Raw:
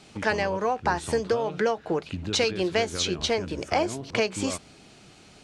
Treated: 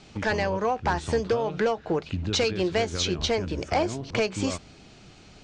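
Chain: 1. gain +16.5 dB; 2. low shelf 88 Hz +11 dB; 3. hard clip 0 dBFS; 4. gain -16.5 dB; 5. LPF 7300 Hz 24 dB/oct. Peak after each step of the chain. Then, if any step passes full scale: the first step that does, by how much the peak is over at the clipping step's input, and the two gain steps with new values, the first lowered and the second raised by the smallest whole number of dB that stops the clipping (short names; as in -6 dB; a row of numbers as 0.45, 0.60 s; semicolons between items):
+8.5, +8.0, 0.0, -16.5, -14.5 dBFS; step 1, 8.0 dB; step 1 +8.5 dB, step 4 -8.5 dB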